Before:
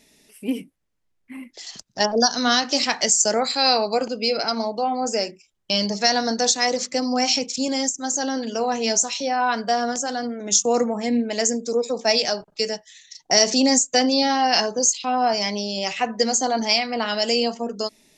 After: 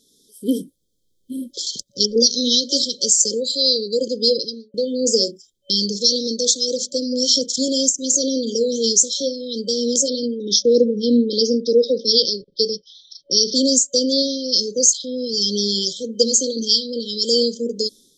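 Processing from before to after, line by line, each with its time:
0:04.28–0:04.74: fade out and dull
0:10.08–0:13.55: Butterworth low-pass 5,600 Hz 96 dB per octave
whole clip: brick-wall band-stop 560–3,100 Hz; low-shelf EQ 240 Hz −8 dB; automatic gain control gain up to 14 dB; level −1 dB

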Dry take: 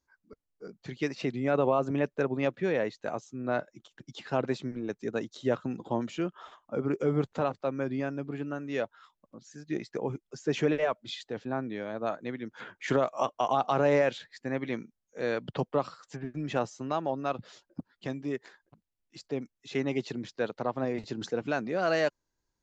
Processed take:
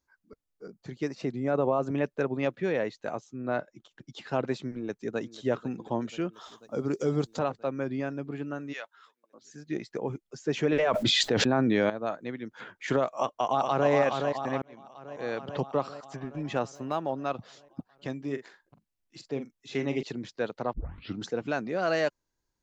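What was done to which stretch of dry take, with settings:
0:00.67–0:01.80: parametric band 2,800 Hz −8 dB 1.4 octaves
0:03.17–0:04.16: high-shelf EQ 5,600 Hz −6.5 dB
0:04.70–0:05.20: delay throw 490 ms, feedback 75%, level −17 dB
0:06.33–0:07.39: high shelf with overshoot 3,300 Hz +10.5 dB, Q 1.5
0:08.72–0:09.42: high-pass filter 1,400 Hz → 410 Hz
0:10.72–0:11.90: envelope flattener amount 100%
0:13.13–0:13.90: delay throw 420 ms, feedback 65%, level −4.5 dB
0:14.62–0:15.58: fade in
0:16.75–0:17.17: running median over 5 samples
0:18.20–0:20.03: double-tracking delay 43 ms −10 dB
0:20.73: tape start 0.48 s

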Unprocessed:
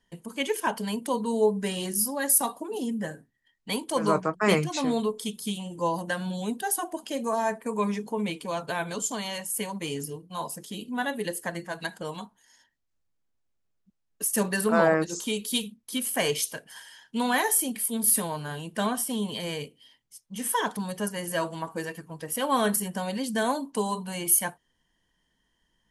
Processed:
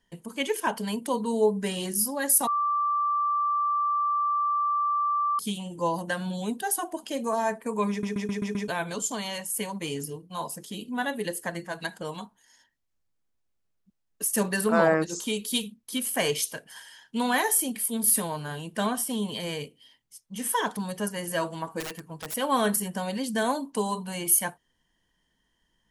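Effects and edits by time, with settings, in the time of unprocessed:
0:02.47–0:05.39: beep over 1,170 Hz −22.5 dBFS
0:07.90: stutter in place 0.13 s, 6 plays
0:21.80–0:22.34: wrap-around overflow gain 29 dB

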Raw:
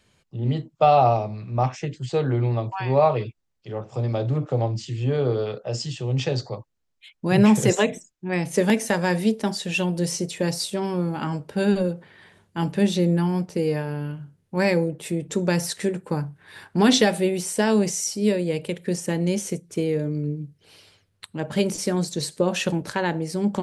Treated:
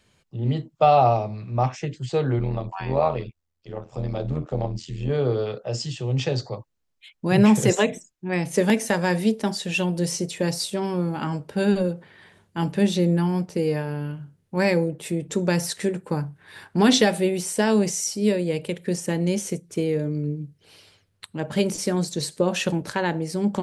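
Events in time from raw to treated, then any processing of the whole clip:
0:02.39–0:05.10: amplitude modulation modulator 83 Hz, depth 60%

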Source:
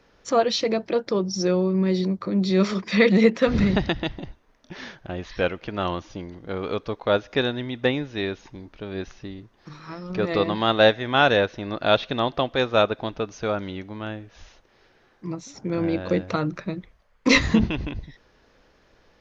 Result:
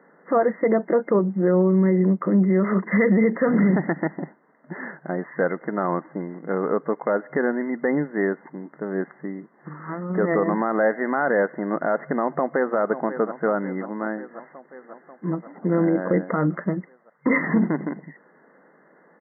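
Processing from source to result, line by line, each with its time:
0:12.14–0:12.77: delay throw 540 ms, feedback 70%, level −16 dB
whole clip: brick-wall band-pass 150–2,100 Hz; brickwall limiter −16.5 dBFS; level +5.5 dB

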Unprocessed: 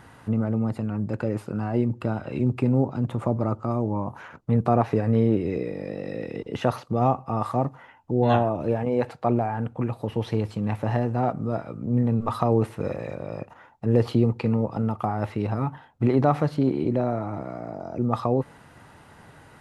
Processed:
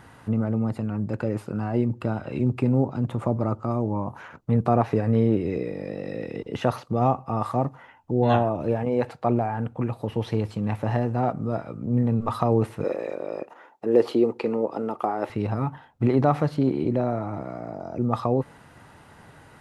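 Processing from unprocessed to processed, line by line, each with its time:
0:12.84–0:15.30: high-pass with resonance 360 Hz, resonance Q 1.8

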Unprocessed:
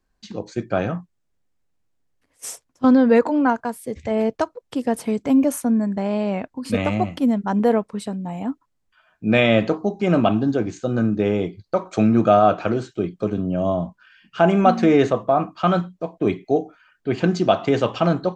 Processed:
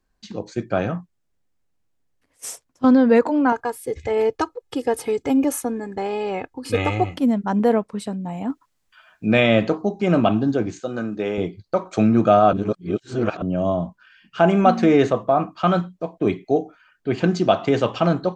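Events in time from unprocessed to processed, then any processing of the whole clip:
0:03.52–0:07.14: comb filter 2.4 ms, depth 76%
0:08.50–0:09.82: one half of a high-frequency compander encoder only
0:10.80–0:11.38: high-pass filter 480 Hz 6 dB per octave
0:12.53–0:13.42: reverse

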